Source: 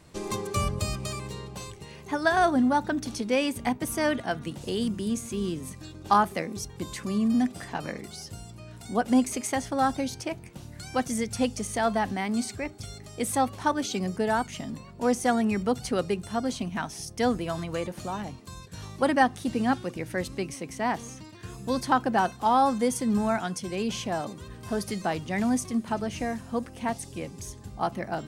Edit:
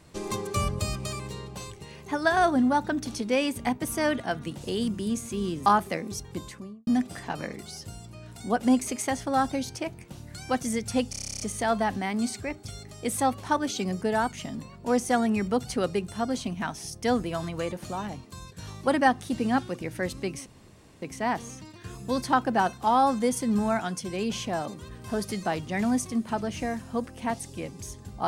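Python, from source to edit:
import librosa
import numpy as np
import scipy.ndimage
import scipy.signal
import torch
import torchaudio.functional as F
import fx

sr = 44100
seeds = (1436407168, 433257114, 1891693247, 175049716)

y = fx.studio_fade_out(x, sr, start_s=6.74, length_s=0.58)
y = fx.edit(y, sr, fx.cut(start_s=5.66, length_s=0.45),
    fx.stutter(start_s=11.55, slice_s=0.03, count=11),
    fx.insert_room_tone(at_s=20.61, length_s=0.56), tone=tone)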